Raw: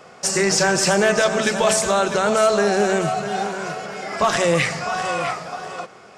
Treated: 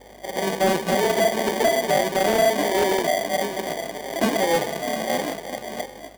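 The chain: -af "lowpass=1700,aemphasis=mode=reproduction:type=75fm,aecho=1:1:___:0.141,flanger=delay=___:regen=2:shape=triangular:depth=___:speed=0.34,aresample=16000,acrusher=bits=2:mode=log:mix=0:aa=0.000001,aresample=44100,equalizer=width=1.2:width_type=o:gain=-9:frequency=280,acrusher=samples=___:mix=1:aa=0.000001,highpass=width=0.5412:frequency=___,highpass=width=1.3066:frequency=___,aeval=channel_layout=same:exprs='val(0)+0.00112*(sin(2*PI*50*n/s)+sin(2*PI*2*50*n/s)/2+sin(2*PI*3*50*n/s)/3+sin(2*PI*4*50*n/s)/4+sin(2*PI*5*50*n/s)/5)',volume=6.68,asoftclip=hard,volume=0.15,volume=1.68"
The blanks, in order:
771, 2.1, 6.7, 33, 210, 210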